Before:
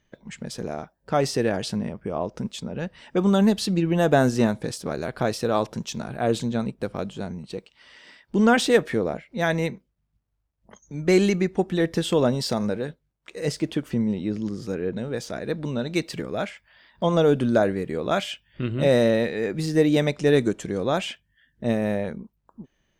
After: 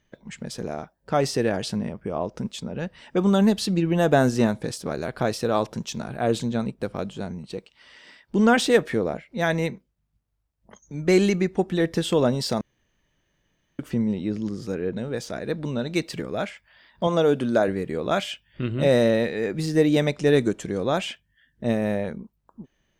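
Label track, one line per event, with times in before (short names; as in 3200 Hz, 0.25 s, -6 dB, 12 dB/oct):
12.610000	13.790000	room tone
17.070000	17.680000	HPF 200 Hz 6 dB/oct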